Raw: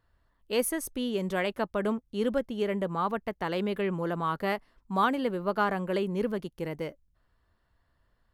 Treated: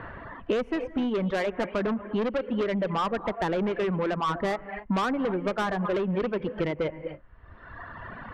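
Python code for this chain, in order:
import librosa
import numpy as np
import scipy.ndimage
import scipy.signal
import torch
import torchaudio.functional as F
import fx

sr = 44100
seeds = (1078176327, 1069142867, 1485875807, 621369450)

p1 = fx.rev_gated(x, sr, seeds[0], gate_ms=290, shape='rising', drr_db=9.0)
p2 = fx.dereverb_blind(p1, sr, rt60_s=1.5)
p3 = fx.rider(p2, sr, range_db=4, speed_s=0.5)
p4 = p2 + F.gain(torch.from_numpy(p3), 0.0).numpy()
p5 = scipy.signal.sosfilt(scipy.signal.butter(4, 2300.0, 'lowpass', fs=sr, output='sos'), p4)
p6 = 10.0 ** (-25.0 / 20.0) * np.tanh(p5 / 10.0 ** (-25.0 / 20.0))
p7 = fx.band_squash(p6, sr, depth_pct=100)
y = F.gain(torch.from_numpy(p7), 2.0).numpy()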